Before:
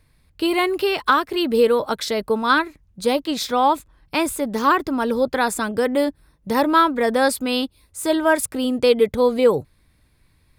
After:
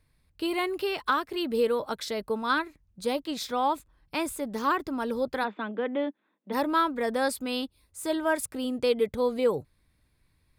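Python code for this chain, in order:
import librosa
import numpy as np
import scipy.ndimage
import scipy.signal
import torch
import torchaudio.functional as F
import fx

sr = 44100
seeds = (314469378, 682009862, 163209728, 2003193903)

y = fx.cheby1_bandpass(x, sr, low_hz=200.0, high_hz=3500.0, order=5, at=(5.43, 6.52), fade=0.02)
y = F.gain(torch.from_numpy(y), -9.0).numpy()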